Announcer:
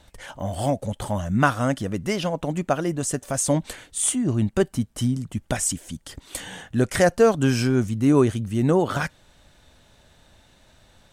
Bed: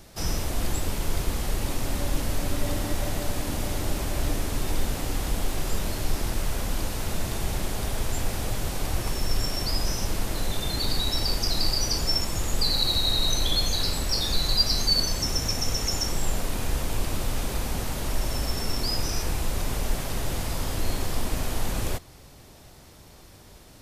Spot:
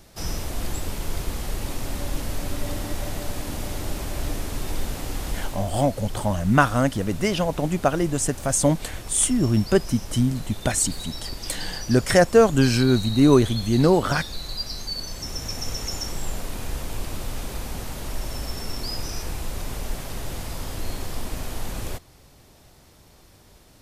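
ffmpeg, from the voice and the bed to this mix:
ffmpeg -i stem1.wav -i stem2.wav -filter_complex "[0:a]adelay=5150,volume=2dB[link_01];[1:a]volume=4dB,afade=type=out:start_time=5.35:duration=0.34:silence=0.446684,afade=type=in:start_time=15:duration=0.66:silence=0.530884[link_02];[link_01][link_02]amix=inputs=2:normalize=0" out.wav

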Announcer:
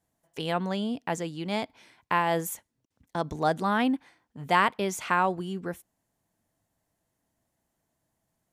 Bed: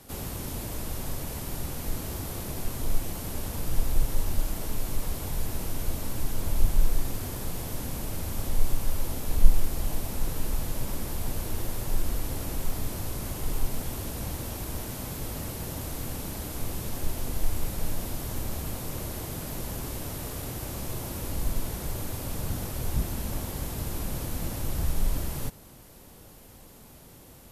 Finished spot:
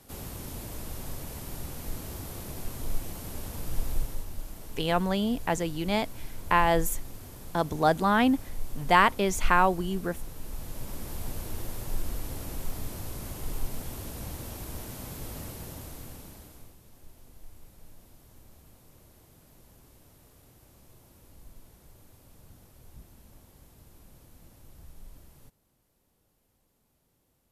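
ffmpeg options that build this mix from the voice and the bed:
ffmpeg -i stem1.wav -i stem2.wav -filter_complex "[0:a]adelay=4400,volume=2.5dB[link_01];[1:a]volume=2dB,afade=type=out:start_time=3.93:duration=0.34:silence=0.473151,afade=type=in:start_time=10.38:duration=0.78:silence=0.473151,afade=type=out:start_time=15.4:duration=1.36:silence=0.133352[link_02];[link_01][link_02]amix=inputs=2:normalize=0" out.wav

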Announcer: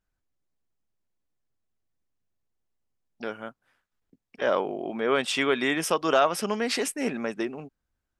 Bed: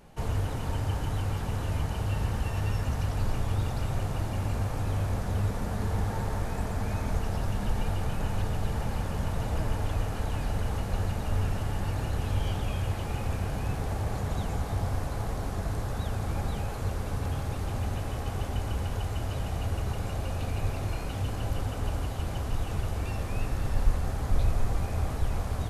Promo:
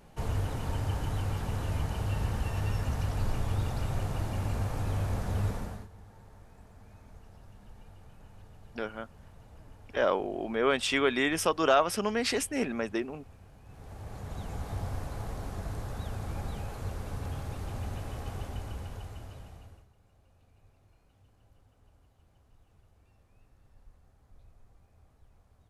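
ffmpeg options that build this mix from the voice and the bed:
ffmpeg -i stem1.wav -i stem2.wav -filter_complex "[0:a]adelay=5550,volume=-2dB[link_01];[1:a]volume=15.5dB,afade=type=out:start_time=5.49:duration=0.39:silence=0.0891251,afade=type=in:start_time=13.65:duration=1.07:silence=0.133352,afade=type=out:start_time=18.29:duration=1.59:silence=0.0446684[link_02];[link_01][link_02]amix=inputs=2:normalize=0" out.wav

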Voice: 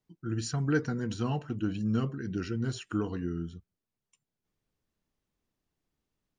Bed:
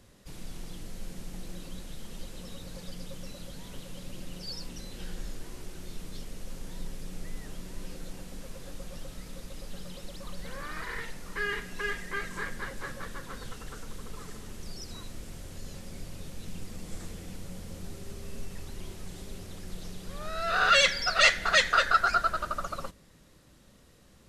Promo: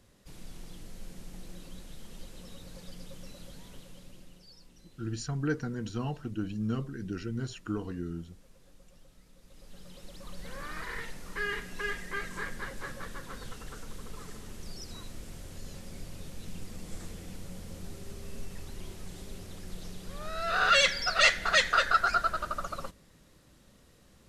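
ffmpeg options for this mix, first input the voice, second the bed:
ffmpeg -i stem1.wav -i stem2.wav -filter_complex "[0:a]adelay=4750,volume=-3dB[link_01];[1:a]volume=10.5dB,afade=type=out:start_time=3.53:duration=0.96:silence=0.251189,afade=type=in:start_time=9.39:duration=1.25:silence=0.177828[link_02];[link_01][link_02]amix=inputs=2:normalize=0" out.wav

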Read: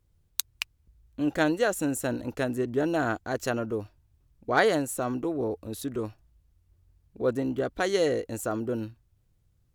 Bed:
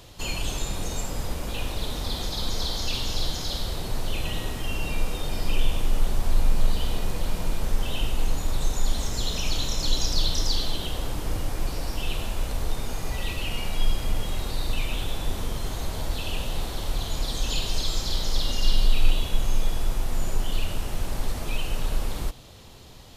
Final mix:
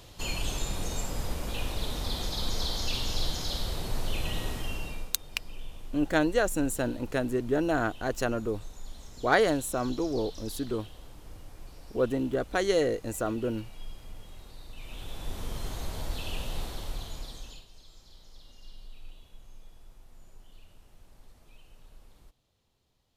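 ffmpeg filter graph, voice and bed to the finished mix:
ffmpeg -i stem1.wav -i stem2.wav -filter_complex "[0:a]adelay=4750,volume=-0.5dB[link_01];[1:a]volume=10.5dB,afade=type=out:start_time=4.53:duration=0.61:silence=0.158489,afade=type=in:start_time=14.74:duration=0.86:silence=0.211349,afade=type=out:start_time=16.6:duration=1.06:silence=0.0794328[link_02];[link_01][link_02]amix=inputs=2:normalize=0" out.wav

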